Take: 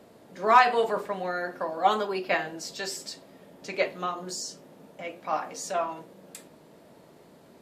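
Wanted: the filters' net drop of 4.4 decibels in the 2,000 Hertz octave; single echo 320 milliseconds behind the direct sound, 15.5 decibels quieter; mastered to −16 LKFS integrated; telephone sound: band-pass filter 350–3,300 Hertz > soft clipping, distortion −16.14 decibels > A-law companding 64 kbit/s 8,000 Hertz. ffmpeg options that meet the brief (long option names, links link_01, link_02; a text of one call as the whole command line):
ffmpeg -i in.wav -af "highpass=350,lowpass=3300,equalizer=frequency=2000:width_type=o:gain=-5,aecho=1:1:320:0.168,asoftclip=threshold=-14dB,volume=14dB" -ar 8000 -c:a pcm_alaw out.wav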